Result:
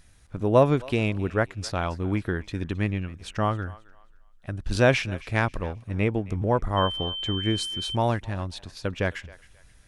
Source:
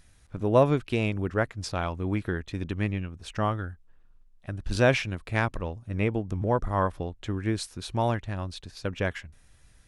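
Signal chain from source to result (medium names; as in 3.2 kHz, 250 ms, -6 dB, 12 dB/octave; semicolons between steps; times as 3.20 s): thinning echo 267 ms, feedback 31%, high-pass 580 Hz, level -19.5 dB; 6.76–7.94 s: whistle 3.1 kHz -32 dBFS; trim +2 dB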